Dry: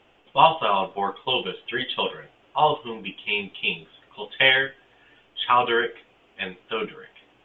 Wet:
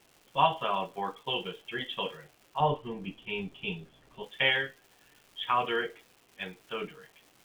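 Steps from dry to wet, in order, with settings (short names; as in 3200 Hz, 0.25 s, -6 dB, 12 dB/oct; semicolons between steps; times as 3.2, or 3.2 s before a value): bell 150 Hz +5 dB 0.79 oct; crackle 460/s -39 dBFS; 2.6–4.23 tilt -2.5 dB/oct; gain -8.5 dB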